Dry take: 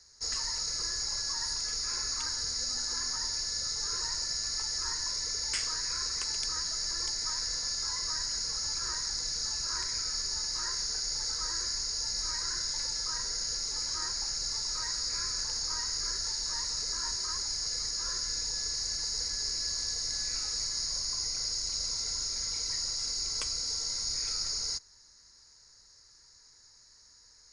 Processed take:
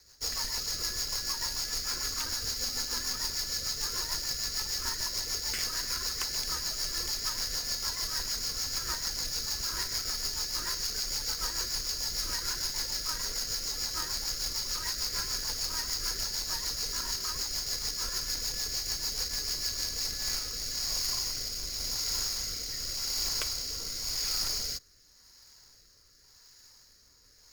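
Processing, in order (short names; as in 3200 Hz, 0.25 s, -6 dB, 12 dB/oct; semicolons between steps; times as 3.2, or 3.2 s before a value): half-waves squared off; rotary speaker horn 6.7 Hz, later 0.9 Hz, at 19.64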